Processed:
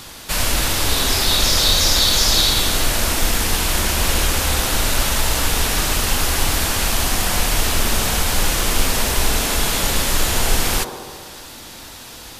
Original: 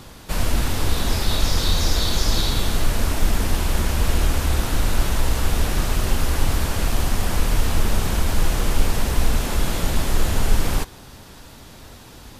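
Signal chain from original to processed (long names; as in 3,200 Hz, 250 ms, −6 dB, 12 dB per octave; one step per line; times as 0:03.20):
tilt shelving filter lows −6.5 dB, about 1,100 Hz
on a send: delay with a band-pass on its return 68 ms, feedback 77%, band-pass 460 Hz, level −3.5 dB
on the sum: level +4.5 dB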